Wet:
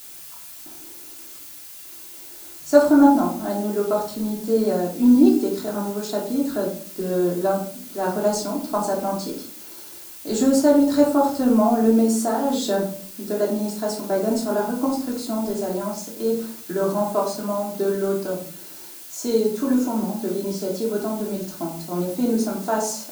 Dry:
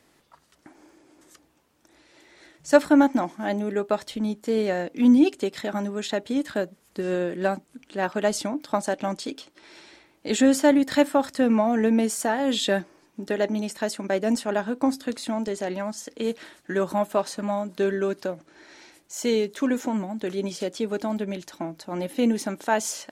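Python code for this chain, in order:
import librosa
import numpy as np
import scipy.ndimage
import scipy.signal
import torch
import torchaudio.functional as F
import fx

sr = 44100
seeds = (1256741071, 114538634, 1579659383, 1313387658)

y = fx.band_shelf(x, sr, hz=2400.0, db=-13.5, octaves=1.2)
y = fx.dmg_noise_colour(y, sr, seeds[0], colour='blue', level_db=-41.0)
y = fx.room_shoebox(y, sr, seeds[1], volume_m3=470.0, walls='furnished', distance_m=3.1)
y = F.gain(torch.from_numpy(y), -2.5).numpy()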